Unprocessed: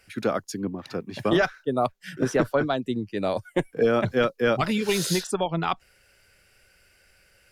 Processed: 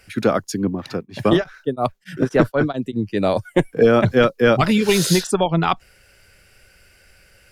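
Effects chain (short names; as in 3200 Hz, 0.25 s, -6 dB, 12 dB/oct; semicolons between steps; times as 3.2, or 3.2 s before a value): low shelf 210 Hz +4.5 dB; 0.87–2.99 beating tremolo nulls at 2.3 Hz -> 5.6 Hz; gain +6.5 dB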